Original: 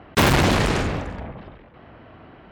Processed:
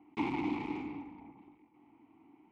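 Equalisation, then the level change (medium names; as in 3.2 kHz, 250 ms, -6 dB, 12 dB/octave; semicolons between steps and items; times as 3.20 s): vowel filter u; treble shelf 8.3 kHz -8 dB; -5.0 dB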